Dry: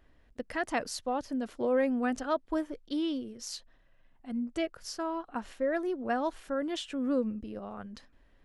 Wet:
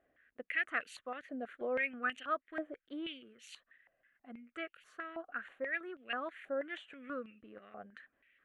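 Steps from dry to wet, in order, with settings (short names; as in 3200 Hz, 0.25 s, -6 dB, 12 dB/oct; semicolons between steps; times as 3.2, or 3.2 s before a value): fixed phaser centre 2200 Hz, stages 4; stepped band-pass 6.2 Hz 750–2800 Hz; gain +11 dB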